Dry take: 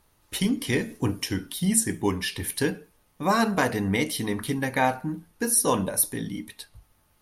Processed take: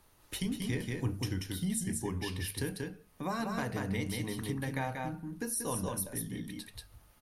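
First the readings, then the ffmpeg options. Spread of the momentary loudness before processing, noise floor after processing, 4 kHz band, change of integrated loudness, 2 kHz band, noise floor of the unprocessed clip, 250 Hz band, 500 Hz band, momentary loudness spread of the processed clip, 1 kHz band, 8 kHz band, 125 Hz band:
13 LU, −63 dBFS, −10.0 dB, −10.5 dB, −11.5 dB, −65 dBFS, −9.5 dB, −11.5 dB, 8 LU, −12.5 dB, −12.0 dB, −5.0 dB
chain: -filter_complex "[0:a]bandreject=frequency=50:width_type=h:width=6,bandreject=frequency=100:width_type=h:width=6,bandreject=frequency=150:width_type=h:width=6,bandreject=frequency=200:width_type=h:width=6,aecho=1:1:185:0.596,acrossover=split=120[link_01][link_02];[link_02]acompressor=threshold=-45dB:ratio=2[link_03];[link_01][link_03]amix=inputs=2:normalize=0"

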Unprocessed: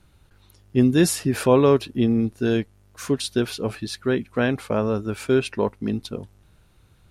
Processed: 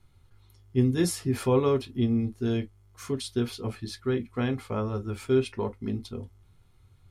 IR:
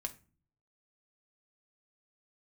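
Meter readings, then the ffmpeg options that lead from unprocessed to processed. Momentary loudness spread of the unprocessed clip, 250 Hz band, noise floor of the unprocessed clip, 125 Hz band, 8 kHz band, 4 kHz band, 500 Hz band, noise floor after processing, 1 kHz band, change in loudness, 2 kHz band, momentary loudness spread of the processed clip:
11 LU, −6.5 dB, −57 dBFS, −3.0 dB, −8.0 dB, −7.5 dB, −6.5 dB, −60 dBFS, −7.5 dB, −6.0 dB, −10.5 dB, 11 LU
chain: -filter_complex "[0:a]equalizer=frequency=91:width=4.1:gain=7.5[link_01];[1:a]atrim=start_sample=2205,atrim=end_sample=4410,asetrate=88200,aresample=44100[link_02];[link_01][link_02]afir=irnorm=-1:irlink=0"

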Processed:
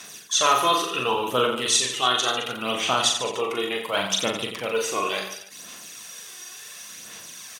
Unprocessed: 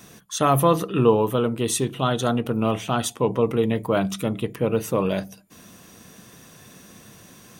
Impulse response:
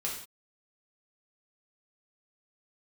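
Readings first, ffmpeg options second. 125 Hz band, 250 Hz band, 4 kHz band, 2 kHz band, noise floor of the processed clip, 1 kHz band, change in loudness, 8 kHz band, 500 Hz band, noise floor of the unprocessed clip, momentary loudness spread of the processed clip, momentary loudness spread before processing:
−16.5 dB, −10.5 dB, +11.0 dB, +7.0 dB, −42 dBFS, +2.0 dB, 0.0 dB, +6.5 dB, −4.5 dB, −49 dBFS, 18 LU, 7 LU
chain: -filter_complex "[0:a]bandpass=frequency=5800:width_type=q:width=0.52:csg=0,aphaser=in_gain=1:out_gain=1:delay=2.8:decay=0.55:speed=0.7:type=sinusoidal,acrossover=split=7100[link_01][link_02];[link_02]acompressor=threshold=-51dB:ratio=4:attack=1:release=60[link_03];[link_01][link_03]amix=inputs=2:normalize=0,aecho=1:1:40|88|145.6|214.7|297.7:0.631|0.398|0.251|0.158|0.1,volume=8.5dB"

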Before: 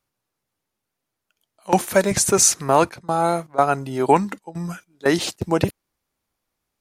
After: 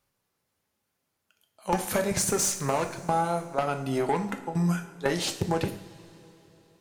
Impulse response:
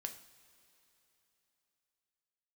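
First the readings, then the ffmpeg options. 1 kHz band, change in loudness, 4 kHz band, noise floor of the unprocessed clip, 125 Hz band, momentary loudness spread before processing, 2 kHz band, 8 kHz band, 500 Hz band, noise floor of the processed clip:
−8.5 dB, −8.0 dB, −6.5 dB, −82 dBFS, −3.0 dB, 14 LU, −7.0 dB, −9.5 dB, −8.5 dB, −80 dBFS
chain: -filter_complex "[0:a]aeval=exprs='(tanh(3.98*val(0)+0.4)-tanh(0.4))/3.98':channel_layout=same,acompressor=threshold=-27dB:ratio=6[link_01];[1:a]atrim=start_sample=2205[link_02];[link_01][link_02]afir=irnorm=-1:irlink=0,volume=6.5dB"

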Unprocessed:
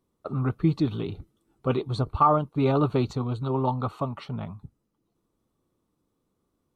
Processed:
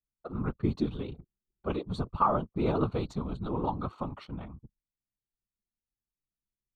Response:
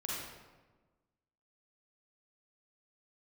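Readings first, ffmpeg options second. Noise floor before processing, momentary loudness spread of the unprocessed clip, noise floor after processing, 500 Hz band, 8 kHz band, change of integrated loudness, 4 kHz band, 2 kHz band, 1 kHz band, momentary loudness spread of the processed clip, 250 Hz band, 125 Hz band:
−77 dBFS, 14 LU, below −85 dBFS, −6.0 dB, can't be measured, −6.0 dB, −6.5 dB, −5.5 dB, −6.0 dB, 15 LU, −5.5 dB, −8.0 dB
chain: -af "afftfilt=real='hypot(re,im)*cos(2*PI*random(0))':imag='hypot(re,im)*sin(2*PI*random(1))':win_size=512:overlap=0.75,anlmdn=0.000398"

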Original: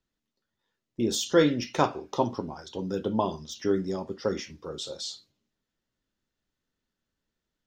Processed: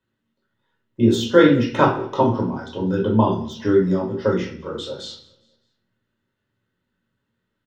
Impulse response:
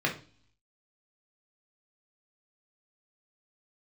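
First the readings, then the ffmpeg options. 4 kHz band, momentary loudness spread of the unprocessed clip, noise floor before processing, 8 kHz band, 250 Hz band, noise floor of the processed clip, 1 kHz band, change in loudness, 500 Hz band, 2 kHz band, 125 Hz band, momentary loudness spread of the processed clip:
+3.5 dB, 14 LU, below −85 dBFS, can't be measured, +10.5 dB, −77 dBFS, +8.5 dB, +9.5 dB, +8.5 dB, +10.0 dB, +12.5 dB, 16 LU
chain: -filter_complex "[0:a]aecho=1:1:204|408|612:0.0631|0.0278|0.0122[link_01];[1:a]atrim=start_sample=2205,asetrate=33957,aresample=44100[link_02];[link_01][link_02]afir=irnorm=-1:irlink=0,volume=-3dB"

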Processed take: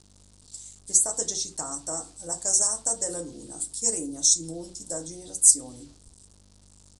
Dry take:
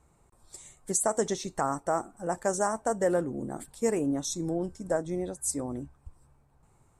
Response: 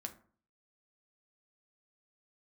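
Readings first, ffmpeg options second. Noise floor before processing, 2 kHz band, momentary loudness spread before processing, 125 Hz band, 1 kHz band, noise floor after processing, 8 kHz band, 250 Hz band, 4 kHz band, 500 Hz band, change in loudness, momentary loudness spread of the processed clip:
−65 dBFS, below −10 dB, 12 LU, −7.5 dB, −10.0 dB, −56 dBFS, +13.5 dB, −7.5 dB, +11.5 dB, −9.0 dB, +7.0 dB, 19 LU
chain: -filter_complex "[0:a]aeval=exprs='val(0)+0.00501*(sin(2*PI*50*n/s)+sin(2*PI*2*50*n/s)/2+sin(2*PI*3*50*n/s)/3+sin(2*PI*4*50*n/s)/4+sin(2*PI*5*50*n/s)/5)':channel_layout=same,acrossover=split=5600[link_01][link_02];[link_02]dynaudnorm=framelen=410:gausssize=7:maxgain=12dB[link_03];[link_01][link_03]amix=inputs=2:normalize=0[link_04];[1:a]atrim=start_sample=2205,asetrate=61740,aresample=44100[link_05];[link_04][link_05]afir=irnorm=-1:irlink=0,aeval=exprs='val(0)*gte(abs(val(0)),0.00251)':channel_layout=same,highshelf=frequency=3100:width_type=q:width=1.5:gain=13.5,aresample=22050,aresample=44100,volume=-3dB"

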